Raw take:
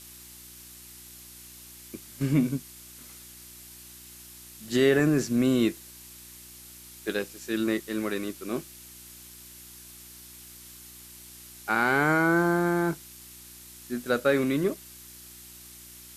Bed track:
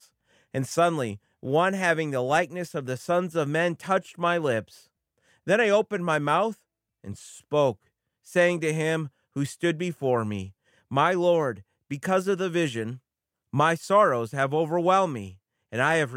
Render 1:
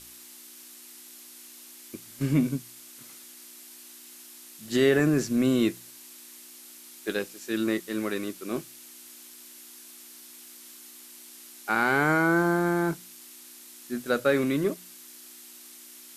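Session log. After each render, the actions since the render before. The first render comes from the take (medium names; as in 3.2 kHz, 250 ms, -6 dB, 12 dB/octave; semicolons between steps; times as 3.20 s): de-hum 60 Hz, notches 3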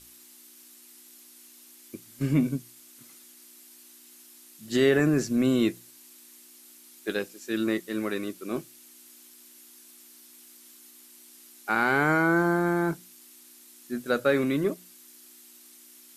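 noise reduction 6 dB, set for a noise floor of -48 dBFS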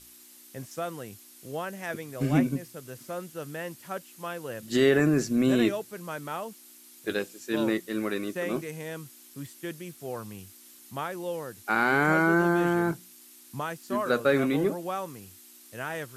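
add bed track -12 dB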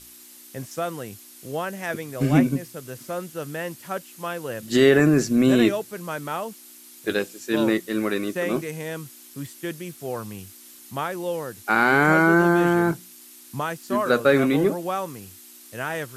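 trim +5.5 dB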